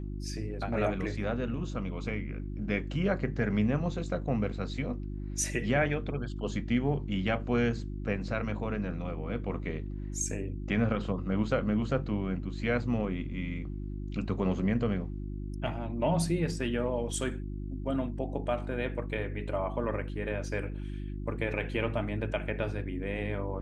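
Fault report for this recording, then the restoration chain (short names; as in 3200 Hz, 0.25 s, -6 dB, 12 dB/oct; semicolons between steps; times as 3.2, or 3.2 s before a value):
hum 50 Hz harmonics 7 -37 dBFS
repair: de-hum 50 Hz, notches 7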